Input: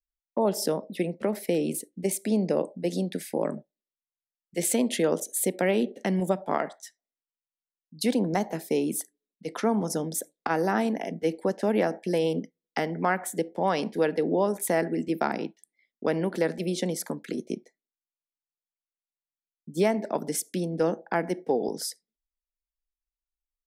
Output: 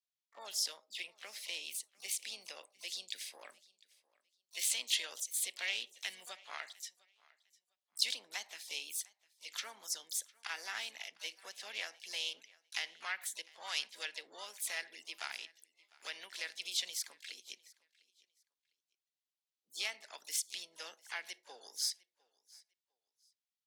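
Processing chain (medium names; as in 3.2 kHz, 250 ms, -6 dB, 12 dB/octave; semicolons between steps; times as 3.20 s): ladder band-pass 4.1 kHz, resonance 30%; harmony voices +4 st -8 dB, +12 st -13 dB; feedback delay 703 ms, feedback 22%, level -24 dB; trim +11.5 dB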